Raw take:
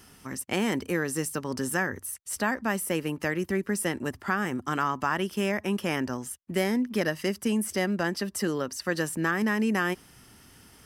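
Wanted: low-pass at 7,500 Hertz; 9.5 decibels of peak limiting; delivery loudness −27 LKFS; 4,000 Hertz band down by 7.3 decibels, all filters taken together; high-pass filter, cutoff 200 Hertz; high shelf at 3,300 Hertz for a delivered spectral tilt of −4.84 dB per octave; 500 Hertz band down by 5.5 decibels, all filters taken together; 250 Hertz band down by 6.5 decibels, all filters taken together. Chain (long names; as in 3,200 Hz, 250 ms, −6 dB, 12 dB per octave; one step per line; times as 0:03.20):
high-pass filter 200 Hz
low-pass filter 7,500 Hz
parametric band 250 Hz −4.5 dB
parametric band 500 Hz −5 dB
high-shelf EQ 3,300 Hz −8 dB
parametric band 4,000 Hz −4.5 dB
level +10.5 dB
brickwall limiter −15.5 dBFS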